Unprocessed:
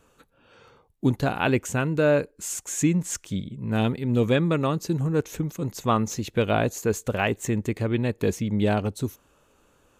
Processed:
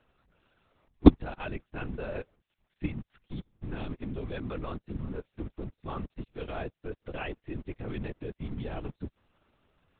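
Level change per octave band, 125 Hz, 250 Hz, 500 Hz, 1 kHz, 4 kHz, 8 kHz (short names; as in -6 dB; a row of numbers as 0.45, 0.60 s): -10.5 dB, -5.5 dB, -11.5 dB, -12.0 dB, -13.0 dB, under -40 dB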